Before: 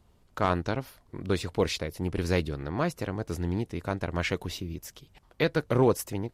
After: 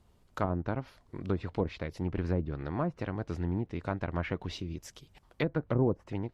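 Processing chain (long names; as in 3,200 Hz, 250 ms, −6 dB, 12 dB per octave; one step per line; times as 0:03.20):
dynamic equaliser 450 Hz, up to −5 dB, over −38 dBFS, Q 2.5
treble cut that deepens with the level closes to 560 Hz, closed at −22 dBFS
level −2 dB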